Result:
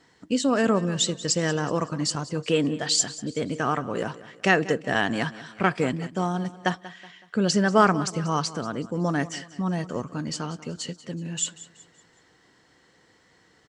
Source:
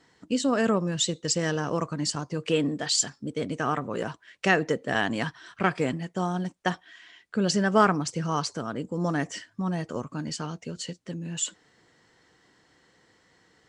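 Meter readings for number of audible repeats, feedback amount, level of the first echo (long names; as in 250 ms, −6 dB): 3, 42%, −17.0 dB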